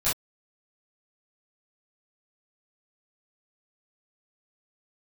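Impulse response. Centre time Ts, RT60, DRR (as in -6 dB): 35 ms, no single decay rate, -13.0 dB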